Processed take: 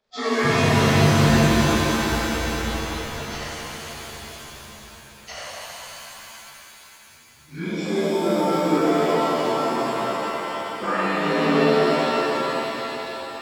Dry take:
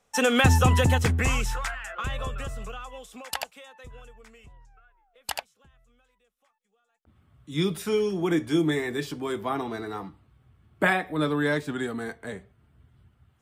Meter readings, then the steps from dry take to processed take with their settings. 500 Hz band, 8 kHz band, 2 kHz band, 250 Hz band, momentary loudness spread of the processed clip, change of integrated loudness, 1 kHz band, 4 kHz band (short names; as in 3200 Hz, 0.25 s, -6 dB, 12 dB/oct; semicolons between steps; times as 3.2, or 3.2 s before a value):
+7.5 dB, +4.0 dB, +3.5 dB, +6.0 dB, 20 LU, +5.0 dB, +8.0 dB, +6.5 dB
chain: inharmonic rescaling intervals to 84%; notches 50/100 Hz; shimmer reverb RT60 3.6 s, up +7 st, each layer -2 dB, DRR -10 dB; gain -7 dB